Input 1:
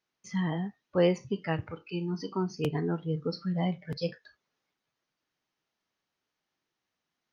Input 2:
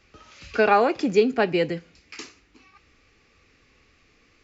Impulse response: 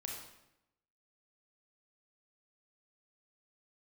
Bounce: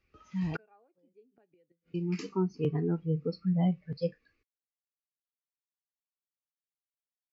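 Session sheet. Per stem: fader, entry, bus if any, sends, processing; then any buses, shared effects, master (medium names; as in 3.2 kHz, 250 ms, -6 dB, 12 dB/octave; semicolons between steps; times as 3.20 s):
-9.0 dB, 0.00 s, muted 1.42–1.94 s, no send, level rider gain up to 6.5 dB
-0.5 dB, 0.00 s, no send, none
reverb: none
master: inverted gate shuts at -19 dBFS, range -36 dB; spectral contrast expander 1.5:1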